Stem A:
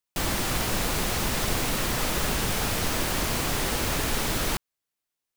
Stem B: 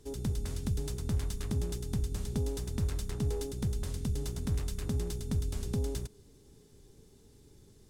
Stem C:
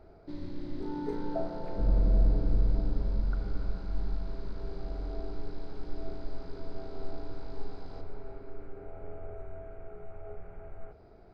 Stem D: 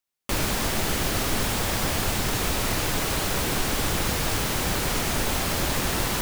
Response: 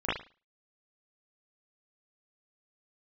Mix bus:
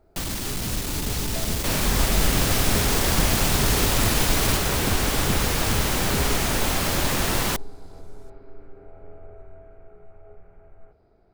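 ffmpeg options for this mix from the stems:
-filter_complex "[0:a]acrossover=split=300|3000[link_01][link_02][link_03];[link_02]acompressor=threshold=-37dB:ratio=6[link_04];[link_01][link_04][link_03]amix=inputs=3:normalize=0,aeval=exprs='clip(val(0),-1,0.0473)':channel_layout=same,volume=0.5dB[link_05];[1:a]adelay=400,volume=-0.5dB[link_06];[2:a]volume=-5dB[link_07];[3:a]adelay=1350,volume=-2dB[link_08];[link_05][link_06][link_07][link_08]amix=inputs=4:normalize=0,dynaudnorm=framelen=460:gausssize=9:maxgain=4dB"

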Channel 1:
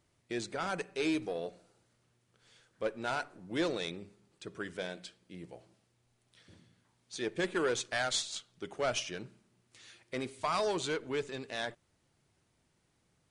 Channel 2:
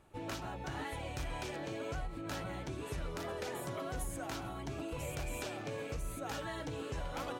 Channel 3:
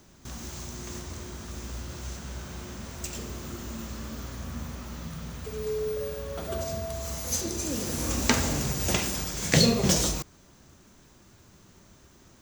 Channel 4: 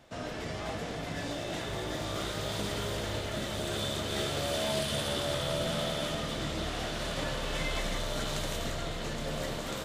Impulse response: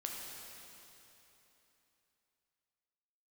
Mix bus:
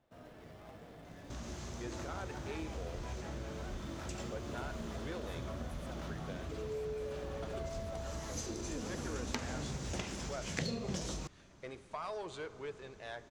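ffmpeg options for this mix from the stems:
-filter_complex "[0:a]equalizer=frequency=230:width=1.5:gain=-12,acontrast=84,adelay=1500,volume=-13dB,asplit=2[link_01][link_02];[link_02]volume=-12.5dB[link_03];[1:a]alimiter=level_in=8.5dB:limit=-24dB:level=0:latency=1,volume=-8.5dB,acrossover=split=450[link_04][link_05];[link_04]aeval=exprs='val(0)*(1-0.7/2+0.7/2*cos(2*PI*5.4*n/s))':channel_layout=same[link_06];[link_05]aeval=exprs='val(0)*(1-0.7/2-0.7/2*cos(2*PI*5.4*n/s))':channel_layout=same[link_07];[link_06][link_07]amix=inputs=2:normalize=0,adelay=1700,volume=-0.5dB[link_08];[2:a]lowpass=9200,equalizer=frequency=4700:width=0.43:gain=5.5,aeval=exprs='0.891*(cos(1*acos(clip(val(0)/0.891,-1,1)))-cos(1*PI/2))+0.126*(cos(3*acos(clip(val(0)/0.891,-1,1)))-cos(3*PI/2))':channel_layout=same,adelay=1050,volume=0.5dB[link_09];[3:a]acrusher=bits=2:mode=log:mix=0:aa=0.000001,volume=-15.5dB[link_10];[4:a]atrim=start_sample=2205[link_11];[link_03][link_11]afir=irnorm=-1:irlink=0[link_12];[link_01][link_08][link_09][link_10][link_12]amix=inputs=5:normalize=0,highshelf=frequency=2400:gain=-11.5,acompressor=threshold=-38dB:ratio=3"

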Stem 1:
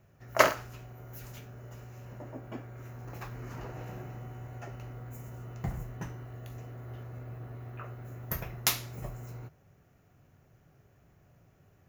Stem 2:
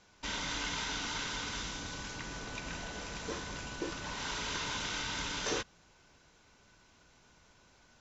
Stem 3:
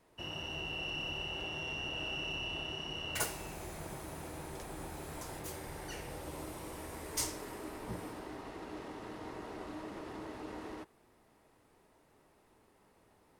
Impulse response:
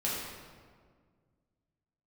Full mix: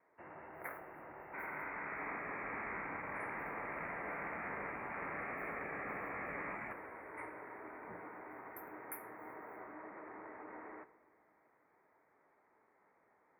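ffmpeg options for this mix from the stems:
-filter_complex "[0:a]adelay=250,volume=-17.5dB[link_01];[1:a]equalizer=frequency=4300:width=3.1:gain=7.5,dynaudnorm=framelen=600:gausssize=3:maxgain=9dB,adelay=1100,volume=-2.5dB,asplit=2[link_02][link_03];[link_03]volume=-22dB[link_04];[2:a]lowpass=frequency=4700:width=0.5412,lowpass=frequency=4700:width=1.3066,volume=-0.5dB,asplit=2[link_05][link_06];[link_06]volume=-18.5dB[link_07];[3:a]atrim=start_sample=2205[link_08];[link_04][link_07]amix=inputs=2:normalize=0[link_09];[link_09][link_08]afir=irnorm=-1:irlink=0[link_10];[link_01][link_02][link_05][link_10]amix=inputs=4:normalize=0,highpass=frequency=930:poles=1,afftfilt=real='re*lt(hypot(re,im),0.0398)':imag='im*lt(hypot(re,im),0.0398)':win_size=1024:overlap=0.75,asuperstop=centerf=4800:order=20:qfactor=0.69"

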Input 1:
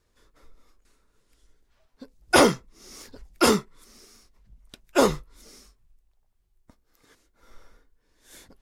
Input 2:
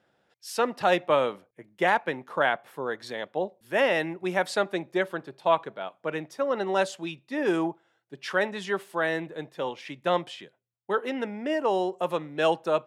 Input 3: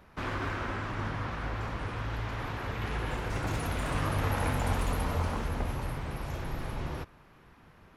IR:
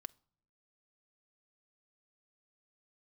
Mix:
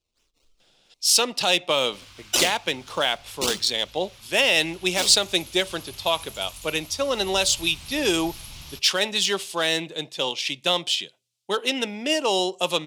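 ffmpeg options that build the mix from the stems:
-filter_complex "[0:a]acrusher=samples=19:mix=1:aa=0.000001:lfo=1:lforange=19:lforate=3.3,volume=-16dB,asplit=2[link_01][link_02];[link_02]volume=-7dB[link_03];[1:a]adelay=600,volume=2dB[link_04];[2:a]equalizer=frequency=420:width=1:gain=-13,adelay=1750,volume=-7.5dB,afade=type=in:start_time=6.96:duration=0.66:silence=0.316228[link_05];[link_01][link_04]amix=inputs=2:normalize=0,adynamicsmooth=sensitivity=7:basefreq=7600,alimiter=limit=-14dB:level=0:latency=1:release=141,volume=0dB[link_06];[3:a]atrim=start_sample=2205[link_07];[link_03][link_07]afir=irnorm=-1:irlink=0[link_08];[link_05][link_06][link_08]amix=inputs=3:normalize=0,aexciter=amount=11.1:drive=2.8:freq=2600"

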